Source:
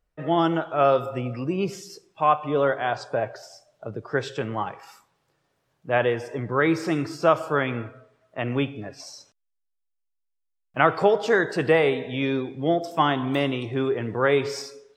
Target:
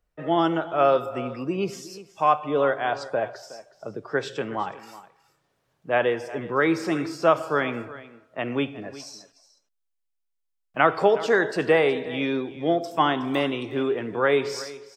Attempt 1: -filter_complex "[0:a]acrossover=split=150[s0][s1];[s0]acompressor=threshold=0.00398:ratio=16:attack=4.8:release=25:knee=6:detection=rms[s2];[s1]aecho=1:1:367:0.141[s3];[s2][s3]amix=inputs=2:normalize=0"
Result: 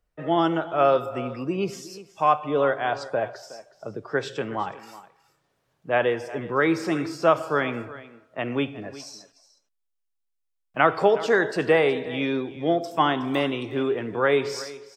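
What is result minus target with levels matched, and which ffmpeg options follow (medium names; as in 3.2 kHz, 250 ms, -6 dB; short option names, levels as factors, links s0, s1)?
compression: peak gain reduction -6 dB
-filter_complex "[0:a]acrossover=split=150[s0][s1];[s0]acompressor=threshold=0.00188:ratio=16:attack=4.8:release=25:knee=6:detection=rms[s2];[s1]aecho=1:1:367:0.141[s3];[s2][s3]amix=inputs=2:normalize=0"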